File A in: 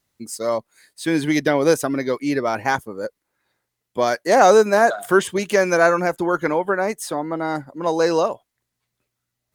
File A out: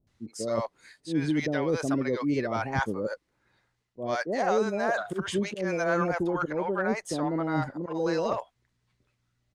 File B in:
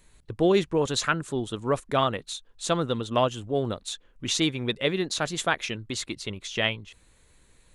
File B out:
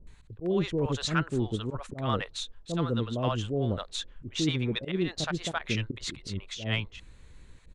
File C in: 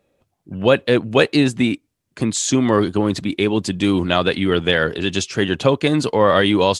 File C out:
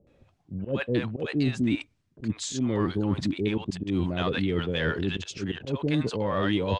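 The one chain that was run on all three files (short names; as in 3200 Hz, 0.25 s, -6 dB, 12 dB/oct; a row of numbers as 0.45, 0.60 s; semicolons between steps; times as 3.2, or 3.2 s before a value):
low shelf 180 Hz +8 dB; reverse; compressor 4:1, threshold -27 dBFS; reverse; auto swell 0.101 s; in parallel at -8 dB: hard clip -21 dBFS; on the sum: air absorption 79 m; bands offset in time lows, highs 70 ms, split 620 Hz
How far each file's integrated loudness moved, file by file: -9.5, -4.0, -10.5 LU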